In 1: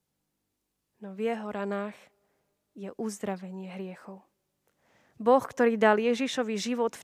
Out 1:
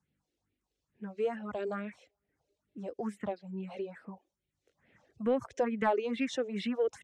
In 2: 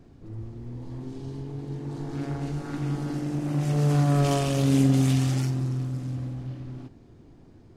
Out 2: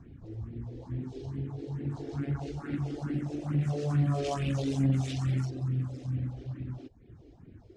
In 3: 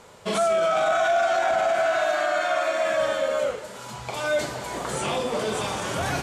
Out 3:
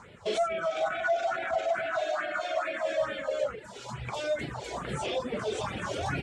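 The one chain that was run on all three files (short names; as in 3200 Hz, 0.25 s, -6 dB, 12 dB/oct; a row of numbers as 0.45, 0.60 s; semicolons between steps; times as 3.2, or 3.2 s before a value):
HPF 40 Hz; notch 4700 Hz, Q 27; reverb removal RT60 0.7 s; in parallel at +2 dB: compressor, threshold -32 dBFS; on the sum: phaser stages 4, 2.3 Hz, lowest notch 160–1100 Hz; soft clip -13.5 dBFS; air absorption 100 m; gain -3.5 dB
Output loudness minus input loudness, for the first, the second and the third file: -6.5, -6.5, -7.0 LU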